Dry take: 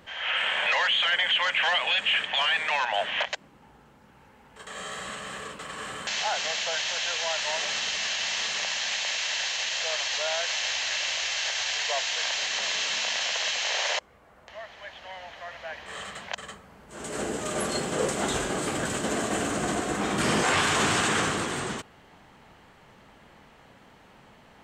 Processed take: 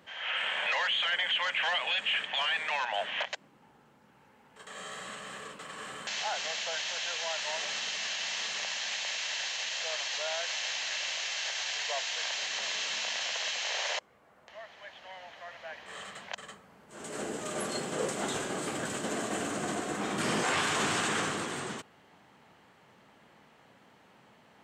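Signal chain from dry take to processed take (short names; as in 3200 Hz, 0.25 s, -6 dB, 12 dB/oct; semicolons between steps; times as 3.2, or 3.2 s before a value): HPF 120 Hz 12 dB/oct; gain -5.5 dB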